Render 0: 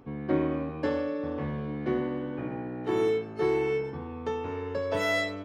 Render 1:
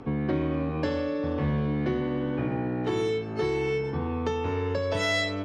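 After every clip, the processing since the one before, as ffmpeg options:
ffmpeg -i in.wav -filter_complex "[0:a]lowpass=7100,asplit=2[link_01][link_02];[link_02]alimiter=limit=-23.5dB:level=0:latency=1:release=423,volume=1dB[link_03];[link_01][link_03]amix=inputs=2:normalize=0,acrossover=split=150|3000[link_04][link_05][link_06];[link_05]acompressor=threshold=-33dB:ratio=3[link_07];[link_04][link_07][link_06]amix=inputs=3:normalize=0,volume=4dB" out.wav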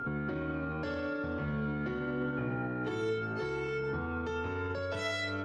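ffmpeg -i in.wav -af "aeval=exprs='val(0)+0.02*sin(2*PI*1400*n/s)':channel_layout=same,alimiter=limit=-24dB:level=0:latency=1:release=55,flanger=delay=7.7:depth=1.9:regen=72:speed=0.86:shape=triangular,volume=1.5dB" out.wav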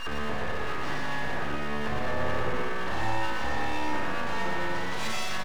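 ffmpeg -i in.wav -filter_complex "[0:a]asplit=2[link_01][link_02];[link_02]aecho=0:1:30|57:0.299|0.562[link_03];[link_01][link_03]amix=inputs=2:normalize=0,aeval=exprs='abs(val(0))':channel_layout=same,asplit=2[link_04][link_05];[link_05]aecho=0:1:118:0.668[link_06];[link_04][link_06]amix=inputs=2:normalize=0,volume=4dB" out.wav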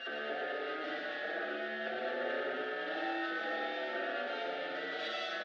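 ffmpeg -i in.wav -filter_complex "[0:a]asuperstop=centerf=1000:order=4:qfactor=1.4,highpass=frequency=310:width=0.5412,highpass=frequency=310:width=1.3066,equalizer=frequency=320:width_type=q:width=4:gain=4,equalizer=frequency=650:width_type=q:width=4:gain=7,equalizer=frequency=960:width_type=q:width=4:gain=10,equalizer=frequency=1400:width_type=q:width=4:gain=6,equalizer=frequency=2400:width_type=q:width=4:gain=-5,equalizer=frequency=3500:width_type=q:width=4:gain=4,lowpass=frequency=4000:width=0.5412,lowpass=frequency=4000:width=1.3066,asplit=2[link_01][link_02];[link_02]adelay=5.4,afreqshift=0.5[link_03];[link_01][link_03]amix=inputs=2:normalize=1,volume=-2dB" out.wav

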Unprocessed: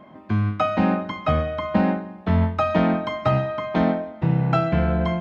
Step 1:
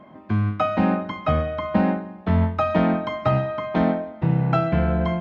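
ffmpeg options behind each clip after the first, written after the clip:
ffmpeg -i in.wav -af "highshelf=frequency=4400:gain=-6.5" out.wav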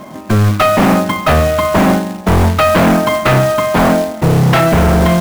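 ffmpeg -i in.wav -af "aeval=exprs='0.501*sin(PI/2*3.55*val(0)/0.501)':channel_layout=same,acrusher=bits=3:mode=log:mix=0:aa=0.000001" out.wav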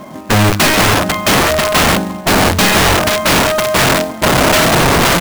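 ffmpeg -i in.wav -filter_complex "[0:a]asplit=2[link_01][link_02];[link_02]adelay=513.1,volume=-14dB,highshelf=frequency=4000:gain=-11.5[link_03];[link_01][link_03]amix=inputs=2:normalize=0,aeval=exprs='(mod(2.24*val(0)+1,2)-1)/2.24':channel_layout=same" out.wav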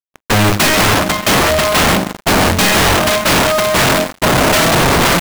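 ffmpeg -i in.wav -af "acrusher=bits=2:mix=0:aa=0.5" out.wav

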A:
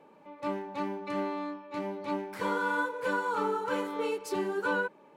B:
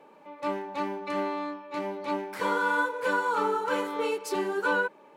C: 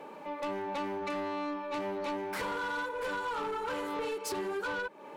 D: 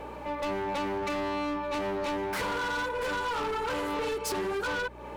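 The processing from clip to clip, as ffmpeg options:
ffmpeg -i in.wav -af "equalizer=frequency=85:width=0.46:gain=-10.5,volume=4.5dB" out.wav
ffmpeg -i in.wav -af "acompressor=threshold=-37dB:ratio=6,asoftclip=type=tanh:threshold=-38.5dB,volume=8dB" out.wav
ffmpeg -i in.wav -af "asoftclip=type=hard:threshold=-34.5dB,aeval=exprs='val(0)+0.002*(sin(2*PI*60*n/s)+sin(2*PI*2*60*n/s)/2+sin(2*PI*3*60*n/s)/3+sin(2*PI*4*60*n/s)/4+sin(2*PI*5*60*n/s)/5)':channel_layout=same,volume=5.5dB" out.wav

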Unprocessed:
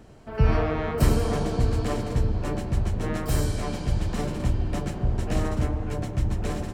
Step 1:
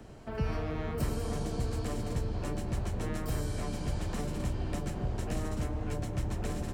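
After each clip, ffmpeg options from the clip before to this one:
ffmpeg -i in.wav -filter_complex "[0:a]acrossover=split=84|330|2700|6500[link_01][link_02][link_03][link_04][link_05];[link_01]acompressor=threshold=-35dB:ratio=4[link_06];[link_02]acompressor=threshold=-37dB:ratio=4[link_07];[link_03]acompressor=threshold=-41dB:ratio=4[link_08];[link_04]acompressor=threshold=-55dB:ratio=4[link_09];[link_05]acompressor=threshold=-50dB:ratio=4[link_10];[link_06][link_07][link_08][link_09][link_10]amix=inputs=5:normalize=0" out.wav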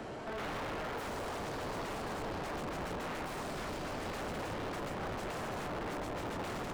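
ffmpeg -i in.wav -filter_complex "[0:a]aeval=exprs='(mod(33.5*val(0)+1,2)-1)/33.5':channel_layout=same,asplit=2[link_01][link_02];[link_02]highpass=frequency=720:poles=1,volume=29dB,asoftclip=type=tanh:threshold=-30.5dB[link_03];[link_01][link_03]amix=inputs=2:normalize=0,lowpass=frequency=1600:poles=1,volume=-6dB,volume=-3dB" out.wav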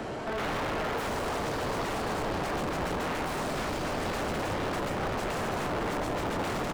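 ffmpeg -i in.wav -af "aecho=1:1:487:0.282,volume=7.5dB" out.wav

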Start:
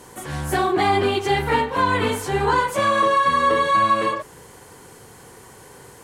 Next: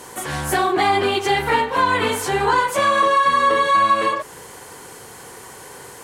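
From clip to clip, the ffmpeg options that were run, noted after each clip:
ffmpeg -i in.wav -filter_complex "[0:a]lowshelf=frequency=300:gain=-9,asplit=2[link_01][link_02];[link_02]acompressor=threshold=-28dB:ratio=6,volume=2.5dB[link_03];[link_01][link_03]amix=inputs=2:normalize=0" out.wav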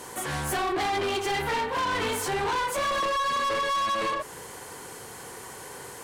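ffmpeg -i in.wav -af "asoftclip=type=tanh:threshold=-22dB,volume=-2.5dB" out.wav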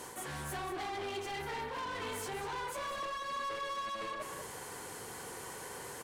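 ffmpeg -i in.wav -filter_complex "[0:a]areverse,acompressor=threshold=-35dB:ratio=10,areverse,asplit=2[link_01][link_02];[link_02]adelay=192.4,volume=-7dB,highshelf=frequency=4000:gain=-4.33[link_03];[link_01][link_03]amix=inputs=2:normalize=0,volume=-4dB" out.wav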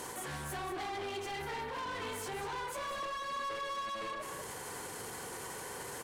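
ffmpeg -i in.wav -af "alimiter=level_in=17dB:limit=-24dB:level=0:latency=1:release=41,volume=-17dB,volume=6.5dB" out.wav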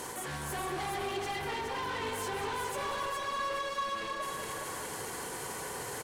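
ffmpeg -i in.wav -af "aecho=1:1:417|834|1251|1668|2085:0.596|0.22|0.0815|0.0302|0.0112,volume=2.5dB" out.wav

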